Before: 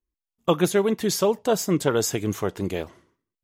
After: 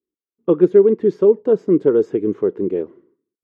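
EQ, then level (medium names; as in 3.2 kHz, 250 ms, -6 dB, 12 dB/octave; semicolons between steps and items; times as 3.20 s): high-pass 240 Hz 12 dB/octave; low-pass 1.3 kHz 12 dB/octave; resonant low shelf 540 Hz +8.5 dB, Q 3; -3.0 dB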